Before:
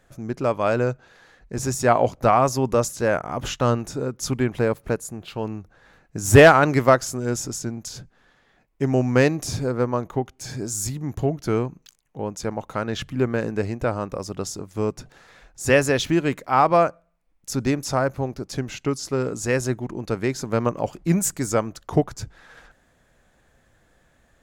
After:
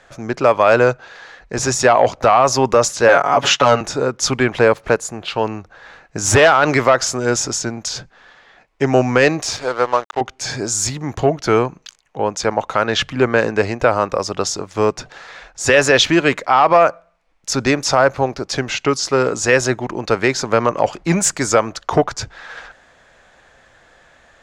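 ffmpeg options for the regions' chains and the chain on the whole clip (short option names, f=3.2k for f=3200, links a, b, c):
-filter_complex "[0:a]asettb=1/sr,asplit=3[a][b][c];[a]atrim=end=3.084[d];[b]atrim=start=3.08:end=3.81,asetpts=PTS-STARTPTS,afade=t=in:d=0.004:c=qsin,afade=t=out:st=0.726:d=0.004:c=qsin,highpass=150,aecho=1:1:7.1:0.92,atrim=end_sample=32193[e];[c]atrim=start=3.806[f];[d][e]acrossfade=d=0.004:c1=hsin:c2=qsin[g];[g][f]acrossfade=d=0.004:c1=qsin:c2=hsin,asettb=1/sr,asplit=3[h][i][j];[h]atrim=end=9.424[k];[i]atrim=start=9.42:end=10.21,asetpts=PTS-STARTPTS,afade=t=in:d=0.004:c=qsin,afade=t=out:st=0.786:d=0.004:c=qsin,equalizer=f=150:w=0.53:g=-12.5,aeval=exprs='sgn(val(0))*max(abs(val(0))-0.00944,0)':c=same[l];[j]atrim=start=10.206[m];[k][l]acrossfade=d=0.004:c1=hsin:c2=qsin[n];[n][m]acrossfade=d=0.004:c1=qsin:c2=hsin,acontrast=63,acrossover=split=480 7100:gain=0.251 1 0.0708[o][p][q];[o][p][q]amix=inputs=3:normalize=0,alimiter=level_in=9dB:limit=-1dB:release=50:level=0:latency=1,volume=-1dB"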